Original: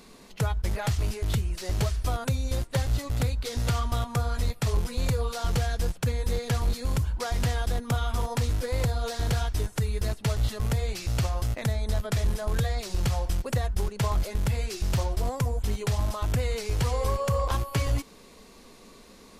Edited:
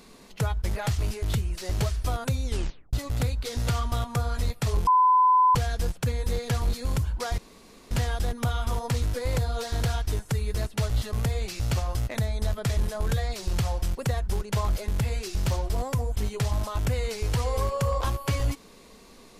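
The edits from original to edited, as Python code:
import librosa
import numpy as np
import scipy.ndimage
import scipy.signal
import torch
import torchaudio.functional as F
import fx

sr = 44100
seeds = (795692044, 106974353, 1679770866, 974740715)

y = fx.edit(x, sr, fx.tape_stop(start_s=2.45, length_s=0.48),
    fx.bleep(start_s=4.87, length_s=0.68, hz=1010.0, db=-15.5),
    fx.insert_room_tone(at_s=7.38, length_s=0.53), tone=tone)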